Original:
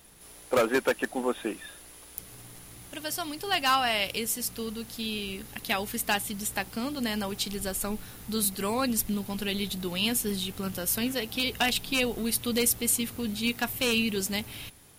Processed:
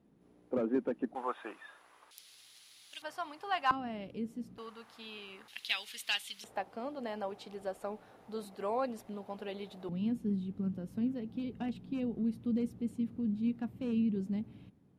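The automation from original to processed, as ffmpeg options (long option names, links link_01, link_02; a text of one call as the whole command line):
ffmpeg -i in.wav -af "asetnsamples=nb_out_samples=441:pad=0,asendcmd='1.15 bandpass f 1100;2.11 bandpass f 4000;3.02 bandpass f 990;3.71 bandpass f 230;4.58 bandpass f 1100;5.48 bandpass f 3300;6.44 bandpass f 650;9.89 bandpass f 200',bandpass=frequency=240:width_type=q:width=1.8:csg=0" out.wav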